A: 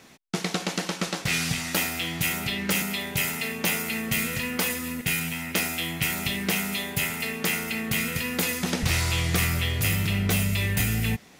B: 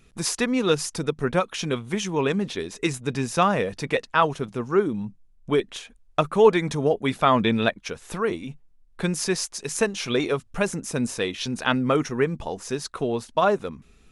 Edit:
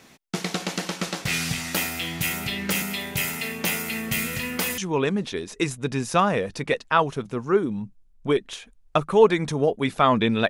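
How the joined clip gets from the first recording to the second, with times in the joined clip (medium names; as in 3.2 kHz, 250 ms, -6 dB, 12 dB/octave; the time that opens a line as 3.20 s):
A
4.78 s: go over to B from 2.01 s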